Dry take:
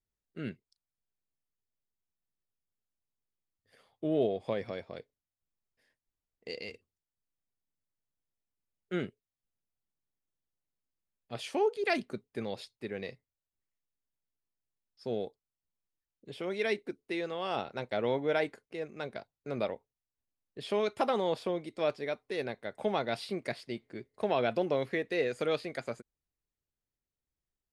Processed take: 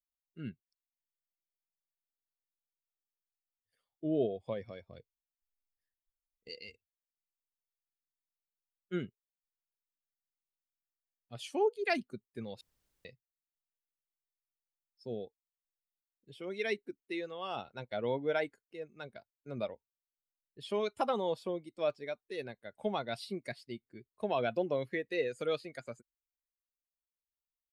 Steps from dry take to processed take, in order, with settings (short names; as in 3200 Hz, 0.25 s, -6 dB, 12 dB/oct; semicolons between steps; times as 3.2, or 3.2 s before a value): per-bin expansion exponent 1.5; 4.86–6.49 low shelf 180 Hz +10.5 dB; 12.61–13.05 room tone